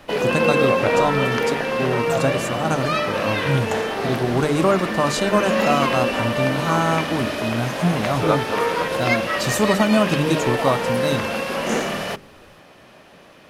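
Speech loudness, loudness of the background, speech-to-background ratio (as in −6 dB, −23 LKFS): −23.0 LKFS, −22.0 LKFS, −1.0 dB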